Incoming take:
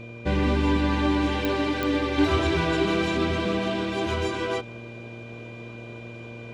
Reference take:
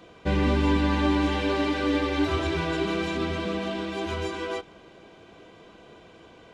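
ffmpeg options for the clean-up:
ffmpeg -i in.wav -af "adeclick=threshold=4,bandreject=frequency=116.8:width_type=h:width=4,bandreject=frequency=233.6:width_type=h:width=4,bandreject=frequency=350.4:width_type=h:width=4,bandreject=frequency=467.2:width_type=h:width=4,bandreject=frequency=584:width_type=h:width=4,bandreject=frequency=2400:width=30,asetnsamples=nb_out_samples=441:pad=0,asendcmd='2.18 volume volume -3.5dB',volume=0dB" out.wav

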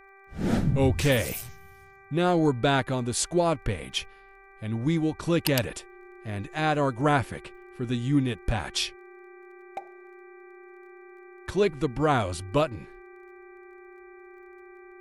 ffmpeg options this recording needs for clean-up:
ffmpeg -i in.wav -af "adeclick=threshold=4,bandreject=frequency=390.8:width_type=h:width=4,bandreject=frequency=781.6:width_type=h:width=4,bandreject=frequency=1172.4:width_type=h:width=4,bandreject=frequency=1563.2:width_type=h:width=4,bandreject=frequency=1954:width_type=h:width=4,bandreject=frequency=2344.8:width_type=h:width=4,bandreject=frequency=360:width=30" out.wav

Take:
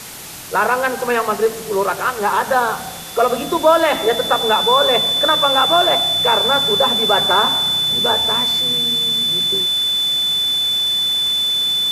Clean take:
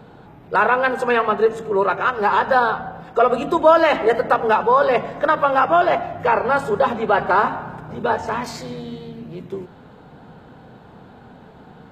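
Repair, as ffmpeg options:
ffmpeg -i in.wav -af "adeclick=threshold=4,bandreject=frequency=3500:width=30,afwtdn=0.025" out.wav

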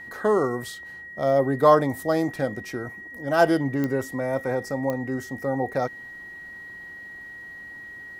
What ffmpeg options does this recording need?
ffmpeg -i in.wav -af "adeclick=threshold=4,bandreject=frequency=1900:width=30" out.wav

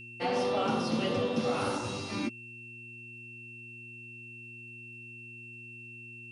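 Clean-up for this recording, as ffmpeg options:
ffmpeg -i in.wav -af "adeclick=threshold=4,bandreject=frequency=118.8:width_type=h:width=4,bandreject=frequency=237.6:width_type=h:width=4,bandreject=frequency=356.4:width_type=h:width=4,bandreject=frequency=2700:width=30,agate=range=-21dB:threshold=-39dB" out.wav

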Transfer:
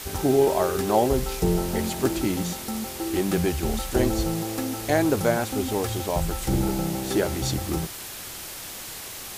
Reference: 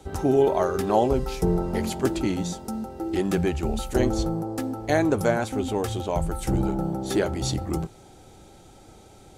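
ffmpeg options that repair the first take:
ffmpeg -i in.wav -af "afwtdn=0.016" out.wav

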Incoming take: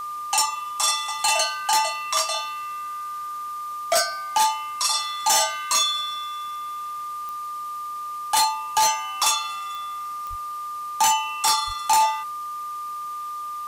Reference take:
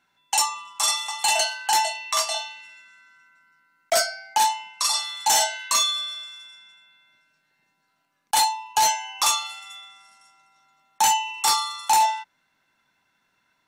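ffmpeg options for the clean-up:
ffmpeg -i in.wav -filter_complex "[0:a]adeclick=threshold=4,bandreject=frequency=1200:width=30,asplit=3[link_01][link_02][link_03];[link_01]afade=type=out:start_time=10.29:duration=0.02[link_04];[link_02]highpass=frequency=140:width=0.5412,highpass=frequency=140:width=1.3066,afade=type=in:start_time=10.29:duration=0.02,afade=type=out:start_time=10.41:duration=0.02[link_05];[link_03]afade=type=in:start_time=10.41:duration=0.02[link_06];[link_04][link_05][link_06]amix=inputs=3:normalize=0,asplit=3[link_07][link_08][link_09];[link_07]afade=type=out:start_time=11.66:duration=0.02[link_10];[link_08]highpass=frequency=140:width=0.5412,highpass=frequency=140:width=1.3066,afade=type=in:start_time=11.66:duration=0.02,afade=type=out:start_time=11.78:duration=0.02[link_11];[link_09]afade=type=in:start_time=11.78:duration=0.02[link_12];[link_10][link_11][link_12]amix=inputs=3:normalize=0,afwtdn=0.004" out.wav

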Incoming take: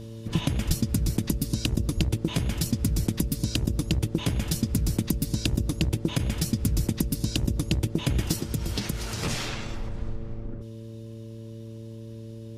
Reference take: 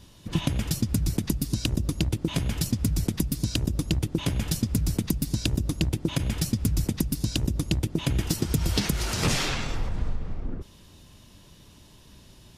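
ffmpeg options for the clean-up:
ffmpeg -i in.wav -filter_complex "[0:a]bandreject=frequency=112:width_type=h:width=4,bandreject=frequency=224:width_type=h:width=4,bandreject=frequency=336:width_type=h:width=4,bandreject=frequency=448:width_type=h:width=4,bandreject=frequency=570:width=30,asplit=3[link_01][link_02][link_03];[link_01]afade=type=out:start_time=0.67:duration=0.02[link_04];[link_02]highpass=frequency=140:width=0.5412,highpass=frequency=140:width=1.3066,afade=type=in:start_time=0.67:duration=0.02,afade=type=out:start_time=0.79:duration=0.02[link_05];[link_03]afade=type=in:start_time=0.79:duration=0.02[link_06];[link_04][link_05][link_06]amix=inputs=3:normalize=0,asplit=3[link_07][link_08][link_09];[link_07]afade=type=out:start_time=1.96:duration=0.02[link_10];[link_08]highpass=frequency=140:width=0.5412,highpass=frequency=140:width=1.3066,afade=type=in:start_time=1.96:duration=0.02,afade=type=out:start_time=2.08:duration=0.02[link_11];[link_09]afade=type=in:start_time=2.08:duration=0.02[link_12];[link_10][link_11][link_12]amix=inputs=3:normalize=0,asetnsamples=nb_out_samples=441:pad=0,asendcmd='8.42 volume volume 5dB',volume=0dB" out.wav

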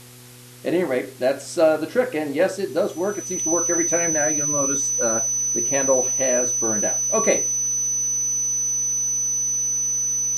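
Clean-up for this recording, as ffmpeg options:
ffmpeg -i in.wav -af "bandreject=frequency=122.9:width_type=h:width=4,bandreject=frequency=245.8:width_type=h:width=4,bandreject=frequency=368.7:width_type=h:width=4,bandreject=frequency=491.6:width_type=h:width=4,bandreject=frequency=6000:width=30,afwtdn=0.0056" out.wav

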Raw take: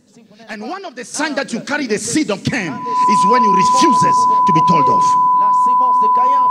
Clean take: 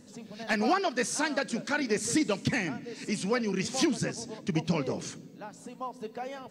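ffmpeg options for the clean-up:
ffmpeg -i in.wav -af "bandreject=frequency=1000:width=30,asetnsamples=nb_out_samples=441:pad=0,asendcmd='1.14 volume volume -10.5dB',volume=0dB" out.wav

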